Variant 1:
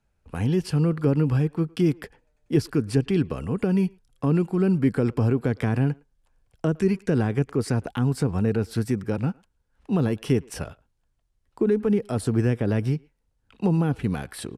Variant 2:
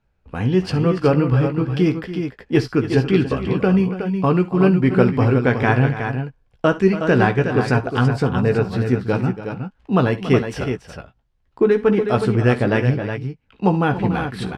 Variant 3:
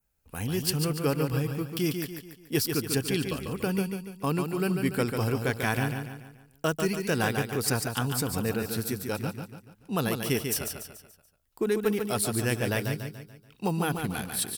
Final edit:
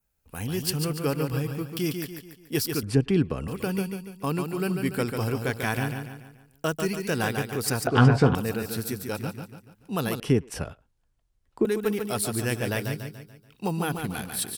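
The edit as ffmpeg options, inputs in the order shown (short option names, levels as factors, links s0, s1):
-filter_complex "[0:a]asplit=2[s0][s1];[2:a]asplit=4[s2][s3][s4][s5];[s2]atrim=end=2.832[s6];[s0]atrim=start=2.828:end=3.482[s7];[s3]atrim=start=3.478:end=7.872[s8];[1:a]atrim=start=7.868:end=8.352[s9];[s4]atrim=start=8.348:end=10.202[s10];[s1]atrim=start=10.198:end=11.652[s11];[s5]atrim=start=11.648[s12];[s6][s7]acrossfade=d=0.004:c1=hsin:c2=hsin[s13];[s13][s8]acrossfade=d=0.004:c1=hsin:c2=hsin[s14];[s14][s9]acrossfade=d=0.004:c1=hsin:c2=hsin[s15];[s15][s10]acrossfade=d=0.004:c1=hsin:c2=hsin[s16];[s16][s11]acrossfade=d=0.004:c1=hsin:c2=hsin[s17];[s17][s12]acrossfade=d=0.004:c1=hsin:c2=hsin"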